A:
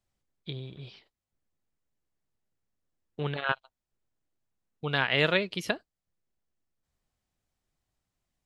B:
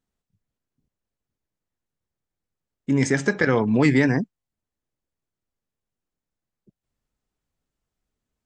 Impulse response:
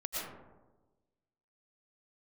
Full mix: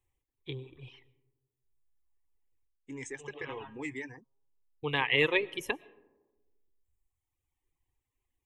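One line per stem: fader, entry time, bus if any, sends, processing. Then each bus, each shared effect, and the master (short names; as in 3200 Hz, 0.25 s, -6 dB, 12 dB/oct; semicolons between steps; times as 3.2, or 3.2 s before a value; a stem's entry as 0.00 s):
+1.0 dB, 0.00 s, send -12.5 dB, bell 88 Hz +4 dB 2.3 oct; auto duck -24 dB, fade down 0.25 s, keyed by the second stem
-18.0 dB, 0.00 s, no send, high shelf 2500 Hz +10.5 dB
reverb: on, RT60 1.2 s, pre-delay 75 ms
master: reverb removal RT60 1.6 s; fixed phaser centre 950 Hz, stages 8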